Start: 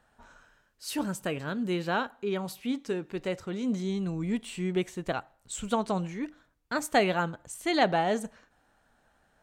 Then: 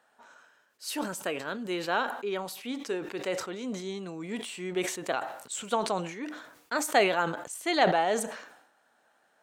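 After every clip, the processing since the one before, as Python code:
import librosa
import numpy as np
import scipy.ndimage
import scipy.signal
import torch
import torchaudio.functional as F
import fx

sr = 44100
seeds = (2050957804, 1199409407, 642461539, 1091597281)

y = scipy.signal.sosfilt(scipy.signal.butter(2, 360.0, 'highpass', fs=sr, output='sos'), x)
y = fx.sustainer(y, sr, db_per_s=72.0)
y = y * librosa.db_to_amplitude(1.0)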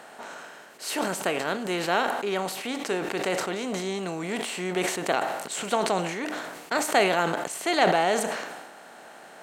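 y = fx.bin_compress(x, sr, power=0.6)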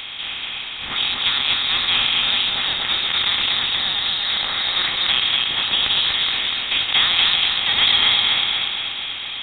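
y = fx.bin_compress(x, sr, power=0.6)
y = fx.echo_feedback(y, sr, ms=241, feedback_pct=54, wet_db=-3.0)
y = fx.freq_invert(y, sr, carrier_hz=4000)
y = y * librosa.db_to_amplitude(1.0)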